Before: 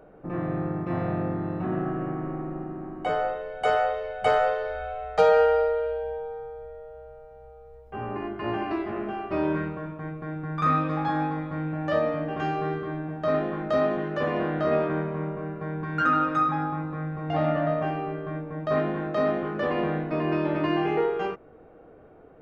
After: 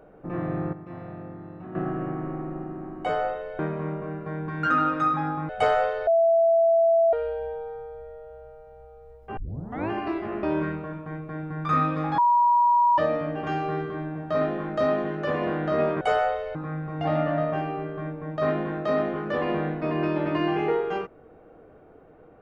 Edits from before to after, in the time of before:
0.73–1.75 gain -11 dB
3.59–4.13 swap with 14.94–16.84
4.71–5.77 bleep 665 Hz -16 dBFS
8.01 tape start 0.53 s
9.07–9.36 cut
11.11–11.91 bleep 961 Hz -16 dBFS

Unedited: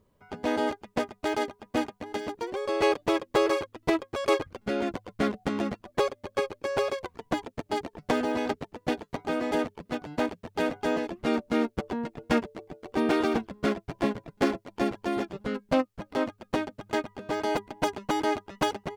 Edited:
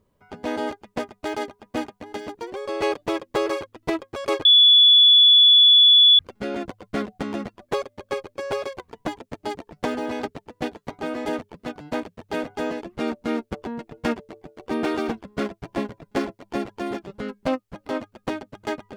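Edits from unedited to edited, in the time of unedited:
4.45 add tone 3430 Hz -9.5 dBFS 1.74 s

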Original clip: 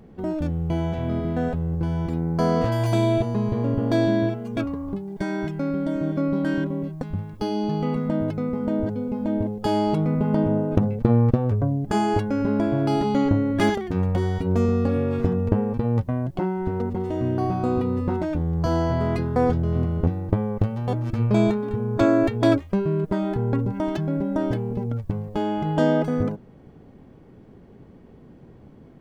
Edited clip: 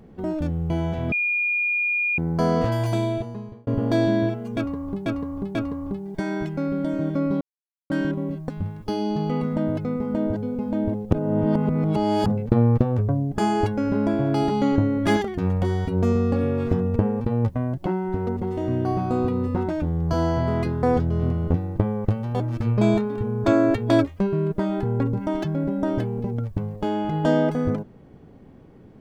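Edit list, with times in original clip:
1.12–2.18 bleep 2430 Hz -20 dBFS
2.71–3.67 fade out
4.57–5.06 loop, 3 plays
6.43 insert silence 0.49 s
9.64–10.79 reverse

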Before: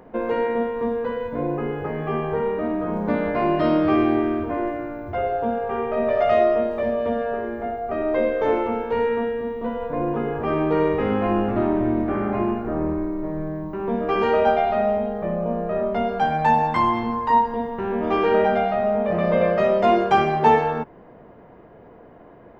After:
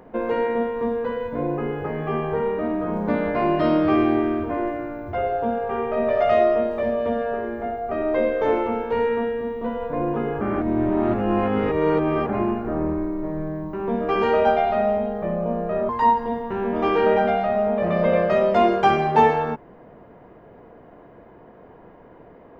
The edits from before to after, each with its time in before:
10.41–12.29 reverse
15.89–17.17 cut

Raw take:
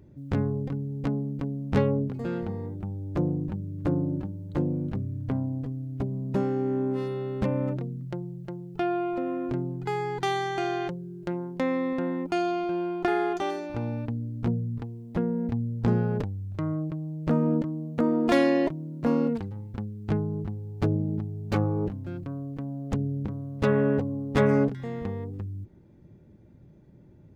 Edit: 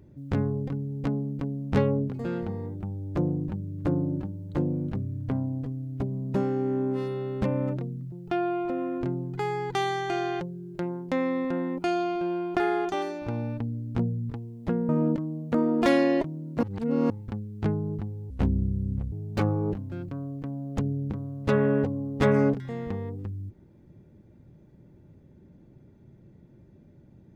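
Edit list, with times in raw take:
8.12–8.6 cut
15.37–17.35 cut
19.09–19.56 reverse
20.76–21.27 speed 62%

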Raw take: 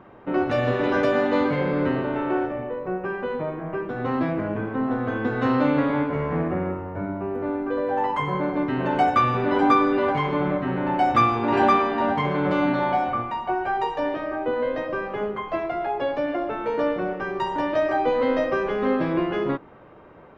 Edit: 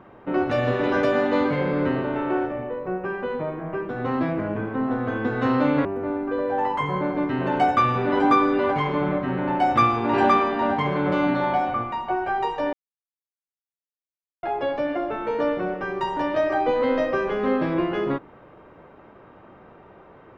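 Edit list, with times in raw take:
5.85–7.24 cut
14.12–15.82 mute

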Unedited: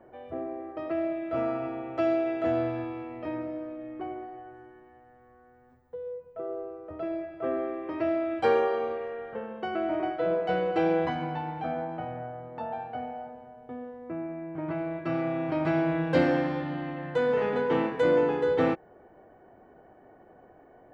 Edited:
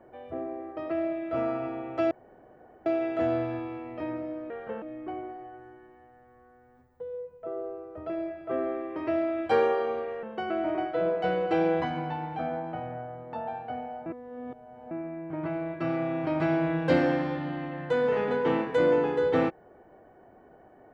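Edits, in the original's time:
2.11 insert room tone 0.75 s
9.16–9.48 move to 3.75
13.31–14.16 reverse

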